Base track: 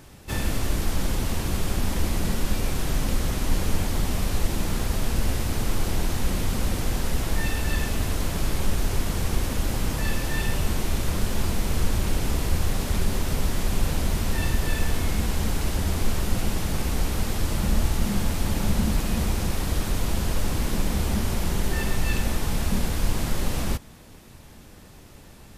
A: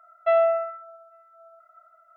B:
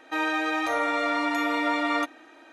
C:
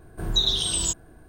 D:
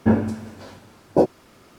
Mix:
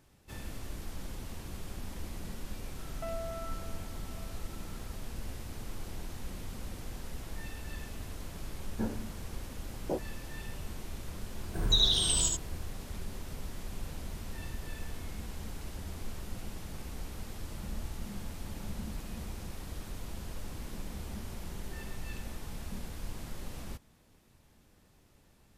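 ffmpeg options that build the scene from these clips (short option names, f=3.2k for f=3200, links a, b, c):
-filter_complex "[0:a]volume=-16.5dB[a];[1:a]acompressor=threshold=-34dB:ratio=6:attack=3.2:release=140:knee=1:detection=peak[b];[3:a]aecho=1:1:77:0.668[c];[b]atrim=end=2.16,asetpts=PTS-STARTPTS,volume=-5dB,afade=t=in:d=0.004:c=hsin,afade=t=out:st=2.156:d=0.004:c=hsin,adelay=2760[d];[4:a]atrim=end=1.78,asetpts=PTS-STARTPTS,volume=-17.5dB,afade=t=in:d=0.004:c=hsin,afade=t=out:st=1.776:d=0.004:c=hsin,adelay=8730[e];[c]atrim=end=1.28,asetpts=PTS-STARTPTS,volume=-4.5dB,afade=t=in:d=0.004:c=hsin,afade=t=out:st=1.276:d=0.004:c=hsin,adelay=11360[f];[a][d][e][f]amix=inputs=4:normalize=0"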